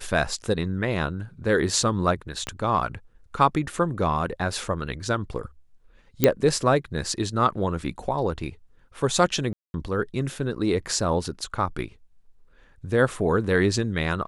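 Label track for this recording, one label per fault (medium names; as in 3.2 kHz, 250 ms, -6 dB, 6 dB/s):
2.470000	2.470000	pop -15 dBFS
6.240000	6.240000	pop -3 dBFS
9.530000	9.740000	dropout 211 ms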